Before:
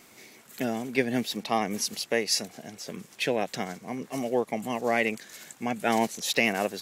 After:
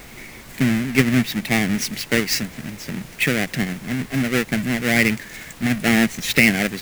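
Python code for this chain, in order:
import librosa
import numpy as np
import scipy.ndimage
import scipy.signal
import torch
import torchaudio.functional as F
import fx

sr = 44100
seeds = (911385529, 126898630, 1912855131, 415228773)

y = fx.halfwave_hold(x, sr)
y = fx.graphic_eq_10(y, sr, hz=(125, 250, 500, 1000, 2000, 4000), db=(10, 4, -4, -11, 12, -3))
y = fx.dmg_noise_colour(y, sr, seeds[0], colour='pink', level_db=-44.0)
y = y * librosa.db_to_amplitude(1.5)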